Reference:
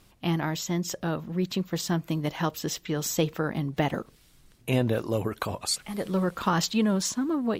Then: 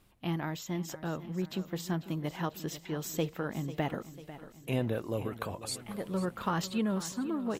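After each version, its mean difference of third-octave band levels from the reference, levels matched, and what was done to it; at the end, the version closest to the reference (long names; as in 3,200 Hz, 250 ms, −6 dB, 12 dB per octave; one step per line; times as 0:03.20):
3.5 dB: parametric band 5,500 Hz −5.5 dB 1 octave
pitch vibrato 3 Hz 6.1 cents
on a send: repeating echo 495 ms, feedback 57%, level −14.5 dB
on the sum: level −6.5 dB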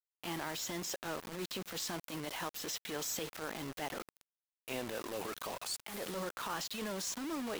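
10.5 dB: Bessel high-pass filter 500 Hz, order 2
downward compressor 12 to 1, threshold −39 dBFS, peak gain reduction 18 dB
transient designer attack −11 dB, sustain +5 dB
bit reduction 8 bits
level +4.5 dB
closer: first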